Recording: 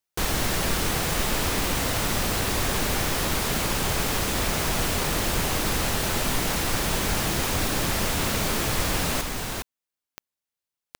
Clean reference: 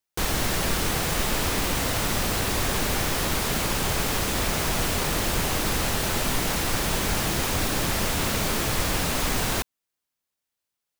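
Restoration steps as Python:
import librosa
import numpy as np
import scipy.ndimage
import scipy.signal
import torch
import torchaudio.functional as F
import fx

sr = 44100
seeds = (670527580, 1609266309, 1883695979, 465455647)

y = fx.fix_declick_ar(x, sr, threshold=10.0)
y = fx.fix_level(y, sr, at_s=9.21, step_db=5.5)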